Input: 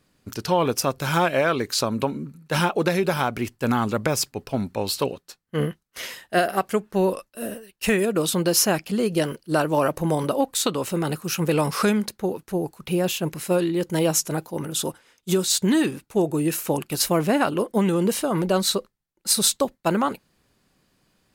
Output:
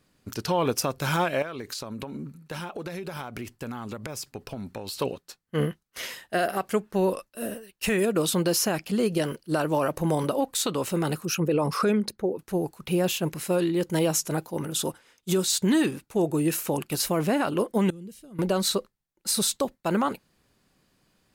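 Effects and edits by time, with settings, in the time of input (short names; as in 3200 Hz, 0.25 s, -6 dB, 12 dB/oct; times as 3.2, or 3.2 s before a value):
1.42–5 compressor 16:1, threshold -29 dBFS
11.25–12.39 formant sharpening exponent 1.5
17.9–18.39 passive tone stack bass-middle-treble 10-0-1
whole clip: limiter -13 dBFS; gain -1.5 dB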